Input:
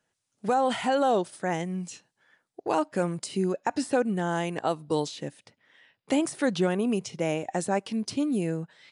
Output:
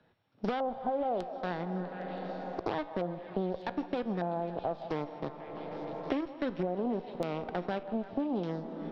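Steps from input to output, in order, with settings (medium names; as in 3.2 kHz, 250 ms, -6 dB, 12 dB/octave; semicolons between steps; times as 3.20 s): sorted samples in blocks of 8 samples; tape spacing loss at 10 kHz 44 dB; Chebyshev shaper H 3 -23 dB, 4 -26 dB, 7 -22 dB, 8 -28 dB, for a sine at -16.5 dBFS; feedback comb 59 Hz, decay 0.44 s, harmonics all, mix 40%; peak limiter -25.5 dBFS, peak gain reduction 6 dB; LFO low-pass square 0.83 Hz 700–3900 Hz; on a send: repeats whose band climbs or falls 162 ms, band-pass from 760 Hz, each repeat 0.7 oct, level -12 dB; on the sum: algorithmic reverb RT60 3.9 s, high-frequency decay 0.7×, pre-delay 85 ms, DRR 16.5 dB; three bands compressed up and down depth 100%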